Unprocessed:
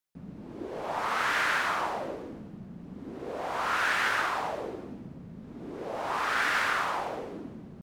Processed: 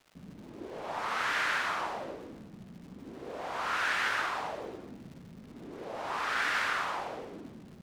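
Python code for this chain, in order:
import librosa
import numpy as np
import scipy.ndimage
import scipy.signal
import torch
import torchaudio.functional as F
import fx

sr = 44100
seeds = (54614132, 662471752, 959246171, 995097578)

y = fx.high_shelf(x, sr, hz=2500.0, db=9.5)
y = fx.dmg_crackle(y, sr, seeds[0], per_s=330.0, level_db=-39.0)
y = fx.lowpass(y, sr, hz=3400.0, slope=6)
y = y * librosa.db_to_amplitude(-5.0)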